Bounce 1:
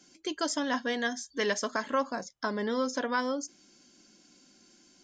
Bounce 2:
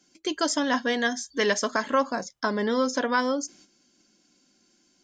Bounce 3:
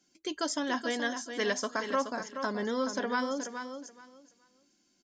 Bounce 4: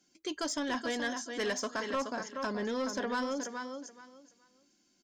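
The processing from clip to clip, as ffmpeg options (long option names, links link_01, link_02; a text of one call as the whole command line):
ffmpeg -i in.wav -af "agate=range=-10dB:threshold=-57dB:ratio=16:detection=peak,volume=5.5dB" out.wav
ffmpeg -i in.wav -af "aecho=1:1:425|850|1275:0.376|0.0714|0.0136,volume=-7dB" out.wav
ffmpeg -i in.wav -af "asoftclip=type=tanh:threshold=-26.5dB" out.wav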